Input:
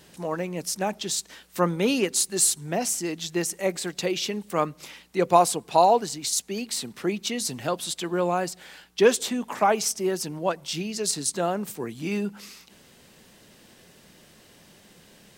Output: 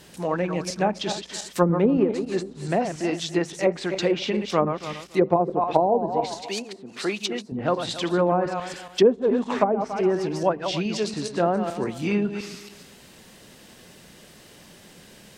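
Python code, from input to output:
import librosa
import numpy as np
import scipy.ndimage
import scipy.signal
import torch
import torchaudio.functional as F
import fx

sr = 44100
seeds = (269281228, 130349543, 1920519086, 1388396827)

y = fx.reverse_delay_fb(x, sr, ms=141, feedback_pct=46, wet_db=-8.0)
y = fx.riaa(y, sr, side='recording', at=(6.42, 7.52))
y = fx.env_lowpass_down(y, sr, base_hz=460.0, full_db=-17.0)
y = y * librosa.db_to_amplitude(4.0)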